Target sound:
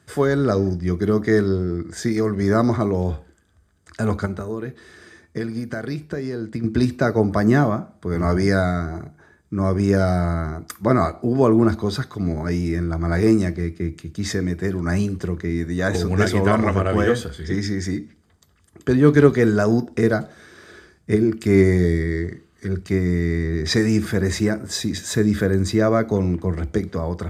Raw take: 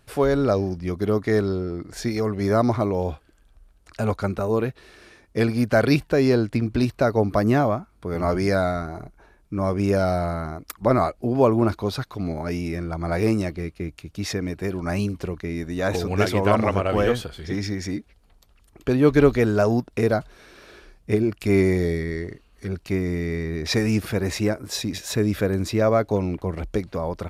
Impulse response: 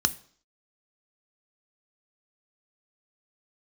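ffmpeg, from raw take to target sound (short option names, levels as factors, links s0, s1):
-filter_complex "[0:a]asettb=1/sr,asplit=3[s0][s1][s2];[s0]atrim=end=4.254[s3];[s1]atrim=start=4.25:end=6.64,asetpts=PTS-STARTPTS,afade=t=in:d=0.004:c=qsin,afade=t=out:st=2.386:d=0.004:c=qsin,acompressor=threshold=0.0447:ratio=12[s4];[s2]atrim=start=6.636[s5];[s3][s4]acrossfade=d=0.004:c1=hsin:c2=qsin[s6];[s6][s5]acrossfade=d=0.004:c1=qsin:c2=hsin[s7];[1:a]atrim=start_sample=2205,asetrate=52920,aresample=44100[s8];[s7][s8]afir=irnorm=-1:irlink=0,volume=0.473"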